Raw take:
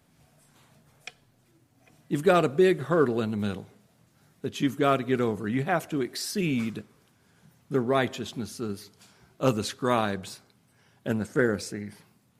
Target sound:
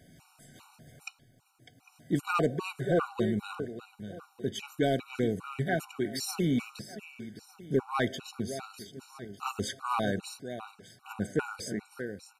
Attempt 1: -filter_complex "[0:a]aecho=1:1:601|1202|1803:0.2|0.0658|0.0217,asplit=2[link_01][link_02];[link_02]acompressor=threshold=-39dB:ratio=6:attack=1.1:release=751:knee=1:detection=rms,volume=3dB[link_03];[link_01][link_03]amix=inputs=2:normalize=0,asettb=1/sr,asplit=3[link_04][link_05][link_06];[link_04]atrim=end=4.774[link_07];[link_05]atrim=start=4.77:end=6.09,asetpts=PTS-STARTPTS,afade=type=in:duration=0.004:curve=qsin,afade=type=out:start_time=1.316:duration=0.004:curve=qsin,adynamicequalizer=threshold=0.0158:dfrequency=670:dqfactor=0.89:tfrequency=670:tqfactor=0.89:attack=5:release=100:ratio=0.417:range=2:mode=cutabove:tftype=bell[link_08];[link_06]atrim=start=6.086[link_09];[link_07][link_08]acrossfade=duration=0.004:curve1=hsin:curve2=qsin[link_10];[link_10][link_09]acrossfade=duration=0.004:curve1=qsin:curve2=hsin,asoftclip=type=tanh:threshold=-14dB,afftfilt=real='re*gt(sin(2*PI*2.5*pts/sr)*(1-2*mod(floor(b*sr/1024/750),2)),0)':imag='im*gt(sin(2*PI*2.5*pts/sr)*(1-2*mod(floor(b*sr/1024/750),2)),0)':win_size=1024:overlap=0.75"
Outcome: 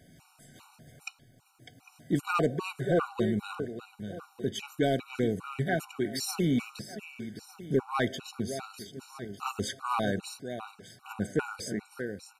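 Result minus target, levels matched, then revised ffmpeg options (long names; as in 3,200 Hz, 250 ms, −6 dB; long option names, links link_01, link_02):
downward compressor: peak gain reduction −10 dB
-filter_complex "[0:a]aecho=1:1:601|1202|1803:0.2|0.0658|0.0217,asplit=2[link_01][link_02];[link_02]acompressor=threshold=-51dB:ratio=6:attack=1.1:release=751:knee=1:detection=rms,volume=3dB[link_03];[link_01][link_03]amix=inputs=2:normalize=0,asettb=1/sr,asplit=3[link_04][link_05][link_06];[link_04]atrim=end=4.774[link_07];[link_05]atrim=start=4.77:end=6.09,asetpts=PTS-STARTPTS,afade=type=in:duration=0.004:curve=qsin,afade=type=out:start_time=1.316:duration=0.004:curve=qsin,adynamicequalizer=threshold=0.0158:dfrequency=670:dqfactor=0.89:tfrequency=670:tqfactor=0.89:attack=5:release=100:ratio=0.417:range=2:mode=cutabove:tftype=bell[link_08];[link_06]atrim=start=6.086[link_09];[link_07][link_08]acrossfade=duration=0.004:curve1=hsin:curve2=qsin[link_10];[link_10][link_09]acrossfade=duration=0.004:curve1=qsin:curve2=hsin,asoftclip=type=tanh:threshold=-14dB,afftfilt=real='re*gt(sin(2*PI*2.5*pts/sr)*(1-2*mod(floor(b*sr/1024/750),2)),0)':imag='im*gt(sin(2*PI*2.5*pts/sr)*(1-2*mod(floor(b*sr/1024/750),2)),0)':win_size=1024:overlap=0.75"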